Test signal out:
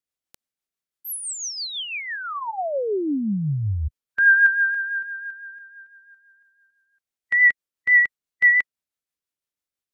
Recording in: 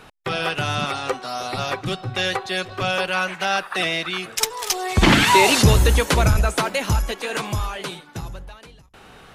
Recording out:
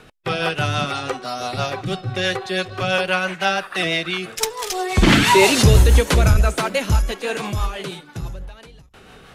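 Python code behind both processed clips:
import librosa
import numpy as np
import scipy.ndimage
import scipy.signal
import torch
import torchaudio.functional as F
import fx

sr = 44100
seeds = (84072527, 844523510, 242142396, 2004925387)

y = fx.rotary(x, sr, hz=6.0)
y = fx.hpss(y, sr, part='harmonic', gain_db=6)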